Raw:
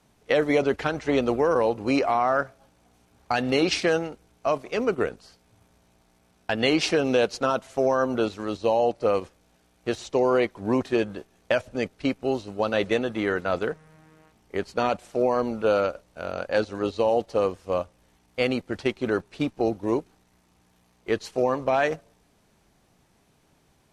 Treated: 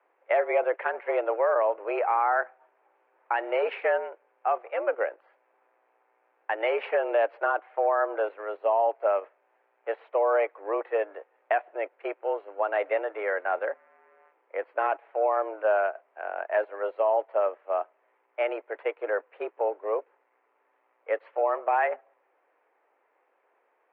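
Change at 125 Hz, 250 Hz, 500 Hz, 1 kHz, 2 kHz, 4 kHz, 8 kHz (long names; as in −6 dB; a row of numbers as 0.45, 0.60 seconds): below −40 dB, −17.5 dB, −2.0 dB, +1.0 dB, −2.0 dB, below −15 dB, below −35 dB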